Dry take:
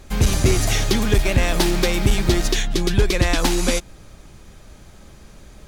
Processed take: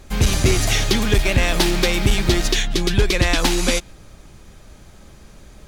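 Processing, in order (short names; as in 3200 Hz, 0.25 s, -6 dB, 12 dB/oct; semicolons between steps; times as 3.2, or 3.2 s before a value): dynamic EQ 3000 Hz, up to +4 dB, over -36 dBFS, Q 0.7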